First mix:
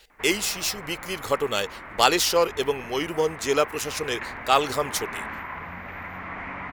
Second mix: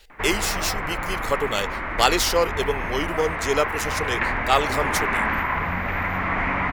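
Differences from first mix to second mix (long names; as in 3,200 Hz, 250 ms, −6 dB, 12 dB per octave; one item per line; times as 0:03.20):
background +11.0 dB
master: remove high-pass filter 82 Hz 6 dB per octave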